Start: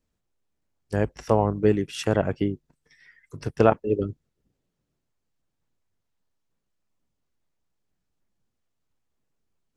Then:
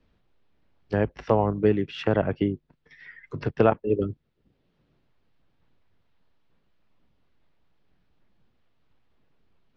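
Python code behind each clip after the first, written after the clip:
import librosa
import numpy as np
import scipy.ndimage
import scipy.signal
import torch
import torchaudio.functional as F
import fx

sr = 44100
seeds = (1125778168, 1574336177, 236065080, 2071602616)

y = scipy.signal.sosfilt(scipy.signal.butter(4, 4000.0, 'lowpass', fs=sr, output='sos'), x)
y = fx.band_squash(y, sr, depth_pct=40)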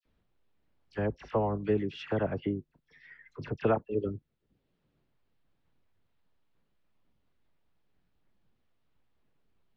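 y = fx.dispersion(x, sr, late='lows', ms=52.0, hz=1900.0)
y = F.gain(torch.from_numpy(y), -7.0).numpy()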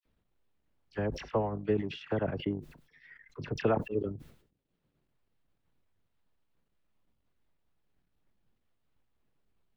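y = fx.transient(x, sr, attack_db=2, sustain_db=-11)
y = fx.sustainer(y, sr, db_per_s=100.0)
y = F.gain(torch.from_numpy(y), -2.5).numpy()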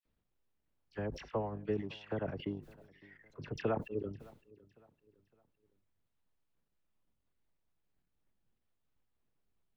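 y = fx.echo_feedback(x, sr, ms=559, feedback_pct=38, wet_db=-23.0)
y = F.gain(torch.from_numpy(y), -6.0).numpy()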